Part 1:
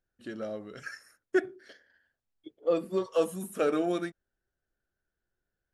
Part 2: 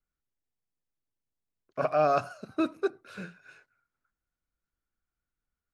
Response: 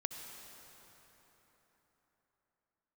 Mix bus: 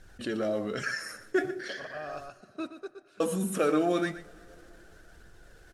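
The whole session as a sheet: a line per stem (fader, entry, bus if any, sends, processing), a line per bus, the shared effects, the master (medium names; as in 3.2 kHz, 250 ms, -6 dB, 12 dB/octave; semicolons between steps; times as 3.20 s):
+3.0 dB, 0.00 s, muted 2.29–3.20 s, send -17.5 dB, echo send -13 dB, modulation noise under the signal 32 dB; flange 0.38 Hz, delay 0.5 ms, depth 7 ms, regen +55%; level flattener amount 50%
-6.0 dB, 0.00 s, send -22.5 dB, echo send -14.5 dB, treble shelf 4.1 kHz +9.5 dB; auto duck -13 dB, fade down 0.55 s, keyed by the first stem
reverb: on, RT60 4.1 s, pre-delay 58 ms
echo: delay 120 ms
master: low-pass 9.7 kHz 12 dB/octave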